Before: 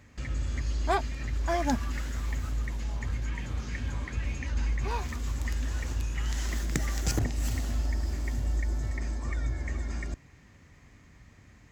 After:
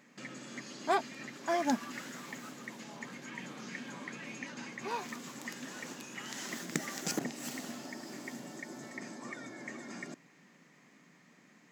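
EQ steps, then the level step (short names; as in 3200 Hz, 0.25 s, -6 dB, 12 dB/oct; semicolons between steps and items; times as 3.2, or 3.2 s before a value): brick-wall FIR high-pass 150 Hz; -2.0 dB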